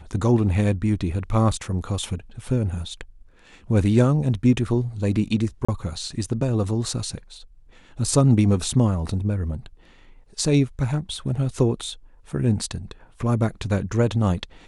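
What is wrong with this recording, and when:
5.65–5.68 s: dropout 35 ms

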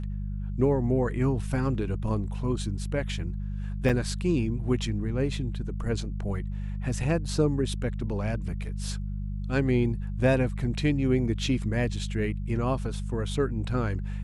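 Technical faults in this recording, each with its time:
hum 50 Hz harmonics 4 -32 dBFS
3.89–3.90 s: dropout 6.1 ms

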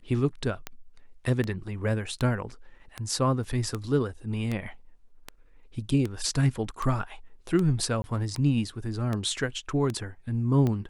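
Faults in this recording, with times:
tick 78 rpm -17 dBFS
3.44 s: dropout 3 ms
8.02–8.04 s: dropout 20 ms

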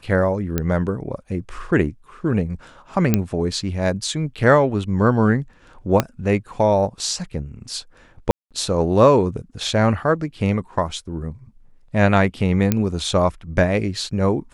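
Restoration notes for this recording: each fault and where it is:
0.58 s: pop -7 dBFS
3.14 s: pop -3 dBFS
6.00 s: pop -3 dBFS
8.31–8.51 s: dropout 197 ms
12.72 s: pop -4 dBFS

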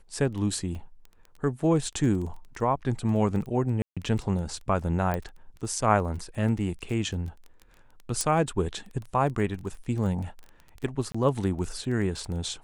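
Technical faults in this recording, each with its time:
crackle 14 per s -34 dBFS
0.75 s: dropout 2.6 ms
3.82–3.97 s: dropout 146 ms
5.14 s: pop -16 dBFS
8.21 s: pop
11.12–11.14 s: dropout 25 ms

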